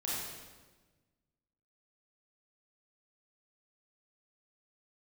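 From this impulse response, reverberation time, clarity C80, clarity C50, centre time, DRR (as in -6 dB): 1.3 s, 0.5 dB, -3.0 dB, 99 ms, -7.5 dB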